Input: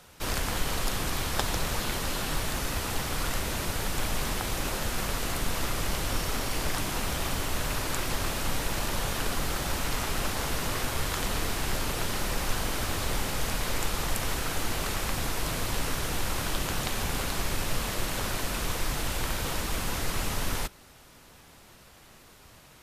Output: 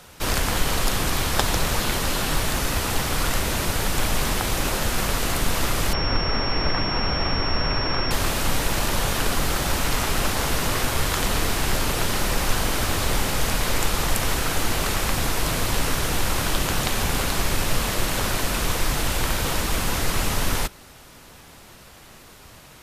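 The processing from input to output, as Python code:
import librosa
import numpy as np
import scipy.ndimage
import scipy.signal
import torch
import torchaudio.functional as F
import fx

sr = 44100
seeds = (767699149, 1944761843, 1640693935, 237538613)

y = fx.pwm(x, sr, carrier_hz=5500.0, at=(5.93, 8.11))
y = y * librosa.db_to_amplitude(7.0)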